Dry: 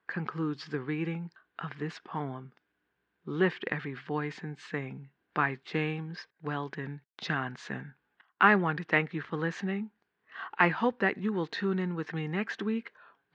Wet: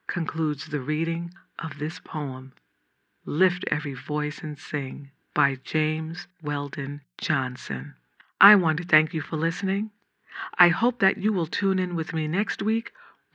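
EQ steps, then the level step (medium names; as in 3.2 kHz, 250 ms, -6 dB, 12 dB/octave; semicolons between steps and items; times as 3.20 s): peaking EQ 650 Hz -7 dB 1.4 oct; hum notches 60/120/180 Hz; +8.5 dB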